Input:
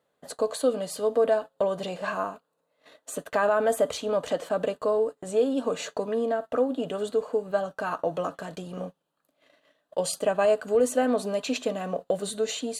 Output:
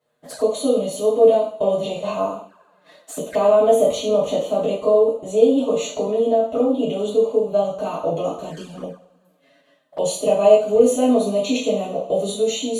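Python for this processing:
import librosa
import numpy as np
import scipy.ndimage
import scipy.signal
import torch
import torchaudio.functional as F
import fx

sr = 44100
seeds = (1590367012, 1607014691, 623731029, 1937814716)

y = fx.rev_double_slope(x, sr, seeds[0], early_s=0.48, late_s=2.3, knee_db=-27, drr_db=-8.0)
y = fx.env_flanger(y, sr, rest_ms=8.5, full_db=-23.0)
y = y * librosa.db_to_amplitude(-1.0)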